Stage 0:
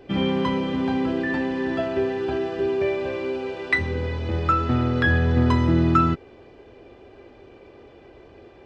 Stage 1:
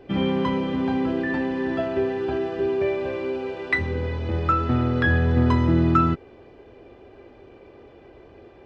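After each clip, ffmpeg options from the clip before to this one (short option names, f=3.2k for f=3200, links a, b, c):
-af "highshelf=f=3.6k:g=-6.5"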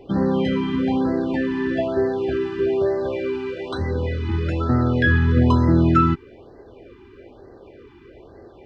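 -af "afftfilt=real='re*(1-between(b*sr/1024,560*pow(2900/560,0.5+0.5*sin(2*PI*1.1*pts/sr))/1.41,560*pow(2900/560,0.5+0.5*sin(2*PI*1.1*pts/sr))*1.41))':imag='im*(1-between(b*sr/1024,560*pow(2900/560,0.5+0.5*sin(2*PI*1.1*pts/sr))/1.41,560*pow(2900/560,0.5+0.5*sin(2*PI*1.1*pts/sr))*1.41))':win_size=1024:overlap=0.75,volume=3dB"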